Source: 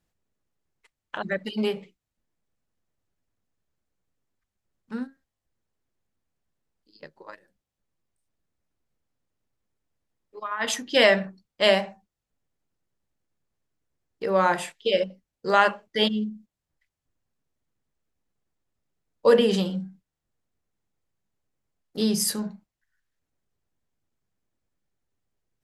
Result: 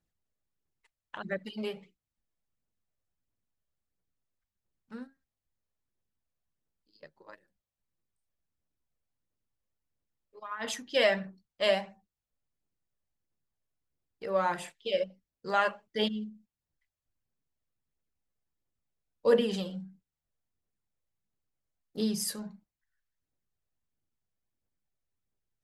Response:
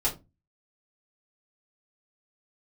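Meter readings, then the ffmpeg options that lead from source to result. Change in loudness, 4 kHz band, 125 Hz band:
-7.5 dB, -8.5 dB, -8.5 dB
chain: -af "aphaser=in_gain=1:out_gain=1:delay=1.9:decay=0.36:speed=1.5:type=triangular,volume=-9dB"

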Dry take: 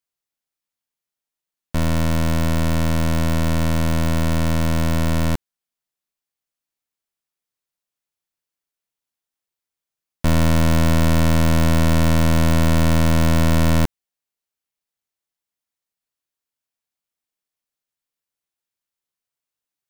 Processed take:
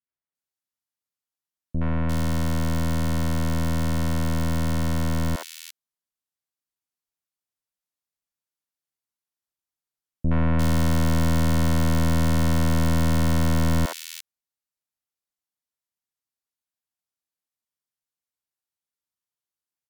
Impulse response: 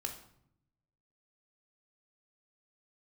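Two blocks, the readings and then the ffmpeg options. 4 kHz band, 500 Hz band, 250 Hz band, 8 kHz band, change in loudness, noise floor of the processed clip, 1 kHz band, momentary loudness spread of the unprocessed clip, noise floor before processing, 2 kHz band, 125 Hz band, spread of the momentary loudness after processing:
-6.0 dB, -6.5 dB, -4.5 dB, -4.5 dB, -5.0 dB, under -85 dBFS, -5.5 dB, 4 LU, under -85 dBFS, -6.0 dB, -4.5 dB, 8 LU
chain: -filter_complex "[0:a]acrossover=split=480|2500[a][b][c];[b]adelay=70[d];[c]adelay=350[e];[a][d][e]amix=inputs=3:normalize=0,volume=-4.5dB" -ar 48000 -c:a libvorbis -b:a 192k

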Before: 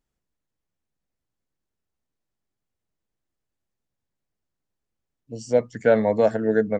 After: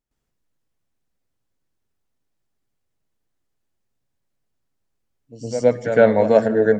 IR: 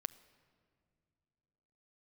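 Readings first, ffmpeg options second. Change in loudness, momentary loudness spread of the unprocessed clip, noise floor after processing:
+4.5 dB, 15 LU, -75 dBFS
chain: -filter_complex "[0:a]asplit=2[a][b];[1:a]atrim=start_sample=2205,asetrate=40572,aresample=44100,adelay=113[c];[b][c]afir=irnorm=-1:irlink=0,volume=12.5dB[d];[a][d]amix=inputs=2:normalize=0,volume=-6.5dB"

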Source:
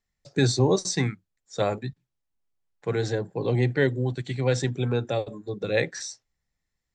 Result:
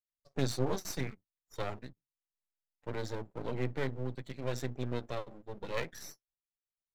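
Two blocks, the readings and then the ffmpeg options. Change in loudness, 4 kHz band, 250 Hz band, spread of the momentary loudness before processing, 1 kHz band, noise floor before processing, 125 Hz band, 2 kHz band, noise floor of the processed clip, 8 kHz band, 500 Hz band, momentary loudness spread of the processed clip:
-12.5 dB, -12.0 dB, -11.5 dB, 13 LU, -8.5 dB, -82 dBFS, -13.0 dB, -12.5 dB, under -85 dBFS, -12.5 dB, -12.5 dB, 14 LU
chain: -af "flanger=delay=2:depth=4.8:regen=-58:speed=0.64:shape=triangular,afftdn=nr=15:nf=-52,aeval=exprs='max(val(0),0)':c=same,volume=-3.5dB"

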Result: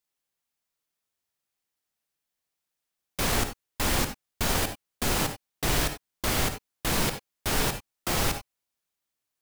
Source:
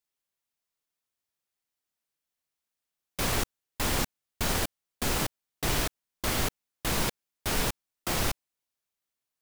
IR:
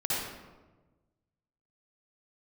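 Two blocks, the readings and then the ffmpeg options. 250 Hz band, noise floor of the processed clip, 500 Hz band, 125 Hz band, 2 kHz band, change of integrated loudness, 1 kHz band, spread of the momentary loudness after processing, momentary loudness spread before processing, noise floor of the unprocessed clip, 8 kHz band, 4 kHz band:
+2.5 dB, -85 dBFS, +2.5 dB, +2.5 dB, +2.5 dB, +2.5 dB, +3.0 dB, 7 LU, 7 LU, under -85 dBFS, +2.5 dB, +2.5 dB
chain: -filter_complex "[0:a]asplit=2[a][b];[1:a]atrim=start_sample=2205,atrim=end_sample=4410[c];[b][c]afir=irnorm=-1:irlink=0,volume=-11dB[d];[a][d]amix=inputs=2:normalize=0"

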